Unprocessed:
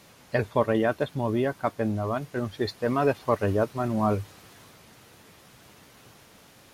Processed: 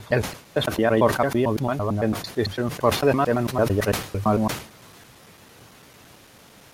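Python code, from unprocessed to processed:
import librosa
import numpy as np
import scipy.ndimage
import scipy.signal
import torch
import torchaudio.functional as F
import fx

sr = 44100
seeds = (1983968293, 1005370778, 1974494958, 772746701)

y = fx.block_reorder(x, sr, ms=112.0, group=5)
y = fx.sustainer(y, sr, db_per_s=120.0)
y = F.gain(torch.from_numpy(y), 4.0).numpy()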